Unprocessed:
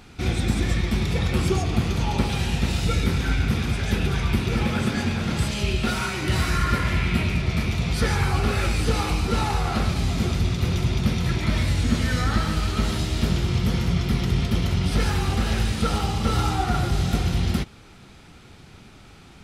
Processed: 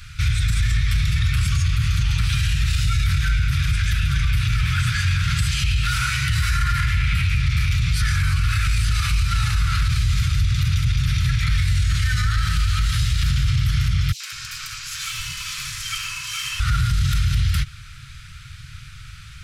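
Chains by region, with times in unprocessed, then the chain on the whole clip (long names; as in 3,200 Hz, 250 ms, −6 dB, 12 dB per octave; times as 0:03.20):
0:14.12–0:16.60: Butterworth high-pass 500 Hz + ring modulation 1,800 Hz + three-band delay without the direct sound highs, mids, lows 80/200 ms, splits 970/3,300 Hz
whole clip: elliptic band-stop filter 130–1,400 Hz, stop band 40 dB; low-shelf EQ 150 Hz +4 dB; brickwall limiter −20.5 dBFS; level +8.5 dB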